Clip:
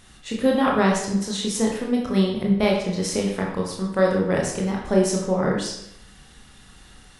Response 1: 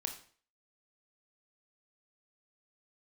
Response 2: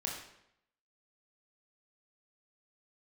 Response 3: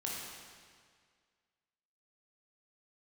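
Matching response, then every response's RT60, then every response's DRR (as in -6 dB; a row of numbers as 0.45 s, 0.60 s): 2; 0.45 s, 0.75 s, 1.9 s; 4.0 dB, -2.0 dB, -4.5 dB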